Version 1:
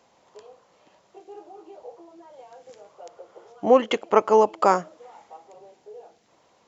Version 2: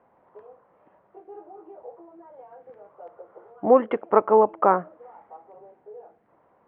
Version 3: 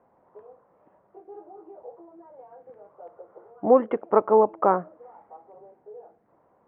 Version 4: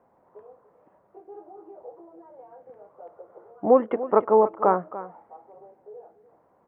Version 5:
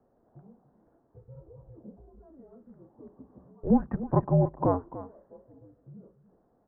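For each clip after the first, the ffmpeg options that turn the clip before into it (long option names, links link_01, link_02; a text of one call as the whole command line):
ffmpeg -i in.wav -af "lowpass=frequency=1700:width=0.5412,lowpass=frequency=1700:width=1.3066" out.wav
ffmpeg -i in.wav -af "highshelf=frequency=2000:gain=-12" out.wav
ffmpeg -i in.wav -af "aecho=1:1:292:0.178" out.wav
ffmpeg -i in.wav -af "highpass=frequency=270:width_type=q:width=0.5412,highpass=frequency=270:width_type=q:width=1.307,lowpass=frequency=2100:width_type=q:width=0.5176,lowpass=frequency=2100:width_type=q:width=0.7071,lowpass=frequency=2100:width_type=q:width=1.932,afreqshift=-280,volume=-4.5dB" out.wav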